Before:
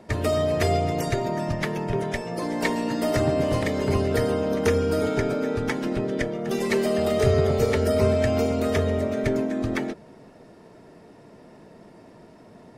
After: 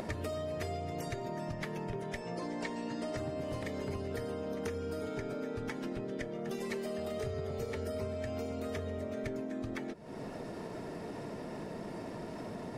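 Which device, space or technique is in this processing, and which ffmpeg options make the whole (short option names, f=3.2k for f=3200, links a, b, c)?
upward and downward compression: -filter_complex "[0:a]asettb=1/sr,asplit=3[a][b][c];[a]atrim=end=2.204[d];[b]atrim=start=2.2:end=3.17,asetpts=PTS-STARTPTS,afade=t=in:d=0.004:c=qsin,afade=t=out:st=0.966:d=0.004:c=qsin,lowpass=f=8.7k:w=0.5412,lowpass=f=8.7k:w=1.3066[e];[c]atrim=start=3.166[f];[d][e]acrossfade=d=0.004:c1=hsin:c2=qsin[g];[g][f]acrossfade=d=0.004:c1=qsin:c2=hsin,acompressor=mode=upward:threshold=-32dB:ratio=2.5,acompressor=threshold=-37dB:ratio=5"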